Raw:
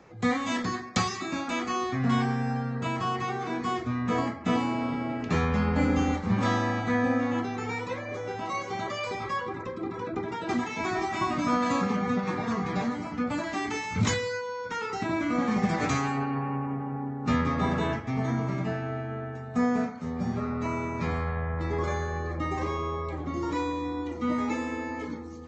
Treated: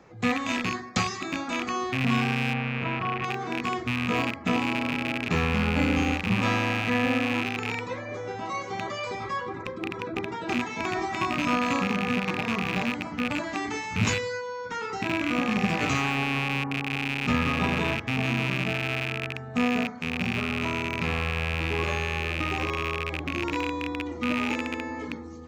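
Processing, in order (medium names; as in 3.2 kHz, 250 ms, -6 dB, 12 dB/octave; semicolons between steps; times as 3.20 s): rattle on loud lows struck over -34 dBFS, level -17 dBFS; 2.53–3.24 s: low-pass 2.2 kHz 12 dB/octave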